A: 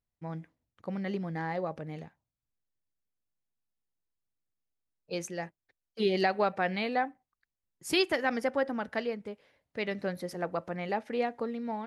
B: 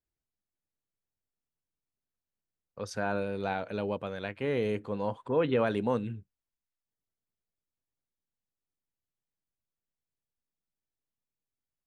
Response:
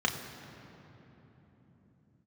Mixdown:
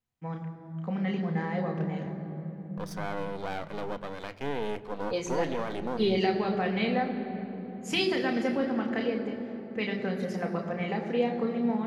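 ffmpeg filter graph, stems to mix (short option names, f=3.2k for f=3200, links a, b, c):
-filter_complex "[0:a]acrossover=split=460|3000[a][b][c];[b]acompressor=threshold=-36dB:ratio=6[d];[a][d][c]amix=inputs=3:normalize=0,volume=-0.5dB,asplit=2[e][f];[f]volume=-5dB[g];[1:a]highpass=110,aeval=exprs='max(val(0),0)':c=same,alimiter=limit=-23dB:level=0:latency=1,volume=2dB,asplit=3[h][i][j];[i]volume=-19.5dB[k];[j]apad=whole_len=523443[l];[e][l]sidechaingate=range=-33dB:threshold=-41dB:ratio=16:detection=peak[m];[2:a]atrim=start_sample=2205[n];[g][k]amix=inputs=2:normalize=0[o];[o][n]afir=irnorm=-1:irlink=0[p];[m][h][p]amix=inputs=3:normalize=0"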